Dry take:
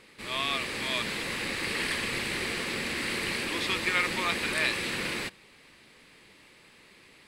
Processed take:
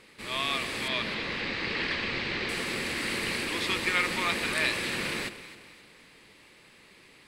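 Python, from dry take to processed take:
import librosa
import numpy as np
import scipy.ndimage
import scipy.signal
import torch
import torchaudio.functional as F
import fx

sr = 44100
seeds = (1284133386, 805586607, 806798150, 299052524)

y = fx.lowpass(x, sr, hz=5000.0, slope=24, at=(0.88, 2.49))
y = fx.echo_alternate(y, sr, ms=130, hz=990.0, feedback_pct=65, wet_db=-10.5)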